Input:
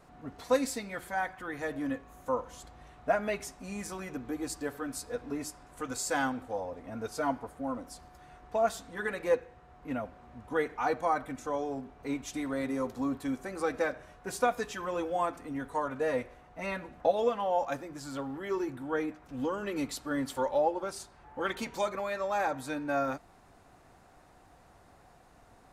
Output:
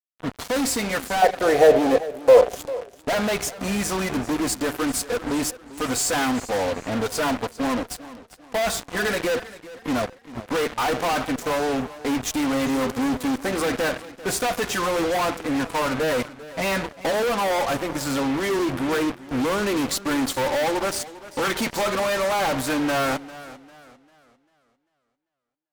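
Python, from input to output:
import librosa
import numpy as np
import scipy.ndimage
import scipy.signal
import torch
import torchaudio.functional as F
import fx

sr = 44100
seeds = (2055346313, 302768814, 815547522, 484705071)

y = fx.fuzz(x, sr, gain_db=44.0, gate_db=-45.0)
y = fx.band_shelf(y, sr, hz=540.0, db=14.0, octaves=1.2, at=(1.22, 2.56))
y = fx.echo_warbled(y, sr, ms=396, feedback_pct=36, rate_hz=2.8, cents=79, wet_db=-17)
y = y * librosa.db_to_amplitude(-7.5)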